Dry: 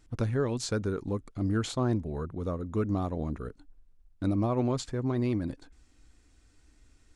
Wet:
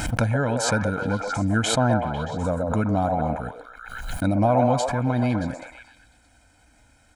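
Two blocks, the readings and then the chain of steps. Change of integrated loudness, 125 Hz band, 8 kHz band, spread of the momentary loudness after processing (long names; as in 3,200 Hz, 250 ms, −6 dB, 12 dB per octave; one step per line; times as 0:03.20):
+8.0 dB, +6.5 dB, +11.5 dB, 13 LU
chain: high-pass filter 240 Hz 6 dB per octave
parametric band 4,900 Hz −8 dB 1.2 octaves
comb filter 1.3 ms, depth 85%
echo through a band-pass that steps 125 ms, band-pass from 640 Hz, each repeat 0.7 octaves, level −1 dB
background raised ahead of every attack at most 47 dB per second
level +9 dB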